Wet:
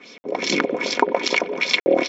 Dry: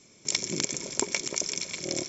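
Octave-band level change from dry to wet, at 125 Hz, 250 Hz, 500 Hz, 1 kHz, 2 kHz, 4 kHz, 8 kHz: +1.5 dB, +11.5 dB, +16.5 dB, +19.0 dB, +14.0 dB, +7.5 dB, no reading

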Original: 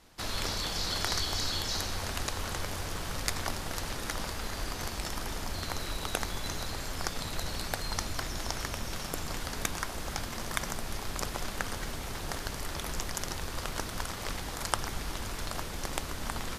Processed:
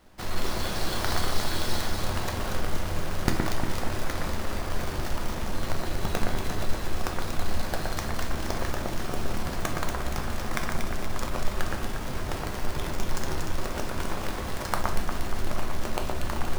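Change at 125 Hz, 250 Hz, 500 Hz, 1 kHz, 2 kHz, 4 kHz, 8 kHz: +6.5 dB, +7.5 dB, +7.0 dB, +4.5 dB, +3.0 dB, -1.5 dB, -2.0 dB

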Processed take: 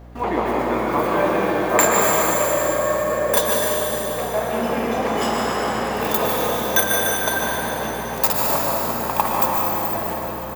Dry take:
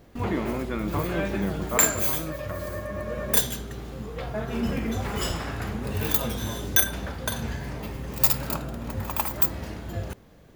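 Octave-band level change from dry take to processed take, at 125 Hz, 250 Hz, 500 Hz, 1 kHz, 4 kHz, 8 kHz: -2.0 dB, +5.0 dB, +12.0 dB, +14.5 dB, +6.0 dB, +4.5 dB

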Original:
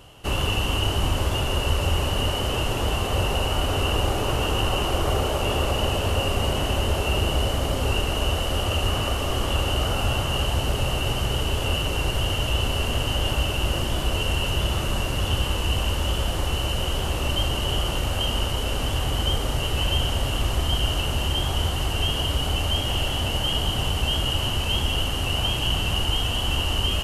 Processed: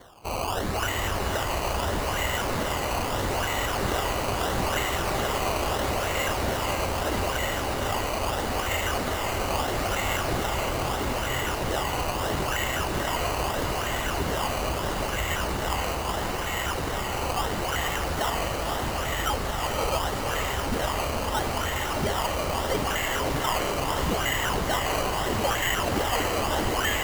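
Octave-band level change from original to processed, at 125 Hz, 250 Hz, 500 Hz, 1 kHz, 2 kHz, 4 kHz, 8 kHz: -8.0 dB, -1.5 dB, +0.5 dB, +3.0 dB, +1.5 dB, -7.5 dB, +1.0 dB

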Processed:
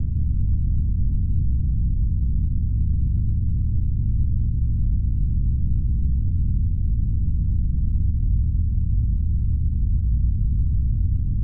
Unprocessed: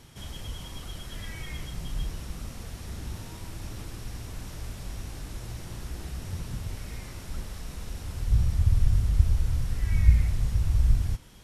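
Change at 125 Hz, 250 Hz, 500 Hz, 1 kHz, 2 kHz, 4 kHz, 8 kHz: +8.0 dB, +10.5 dB, no reading, under -25 dB, under -40 dB, under -40 dB, under -35 dB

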